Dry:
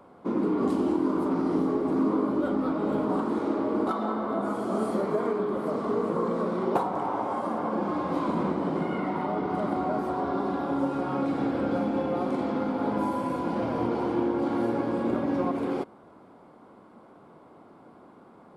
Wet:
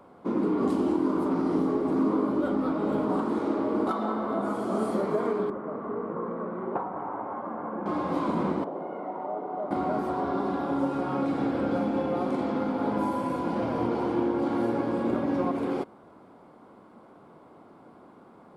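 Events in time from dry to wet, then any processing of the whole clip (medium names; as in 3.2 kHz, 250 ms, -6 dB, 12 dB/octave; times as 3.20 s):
5.50–7.86 s: four-pole ladder low-pass 2.2 kHz, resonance 25%
8.64–9.71 s: band-pass filter 630 Hz, Q 1.8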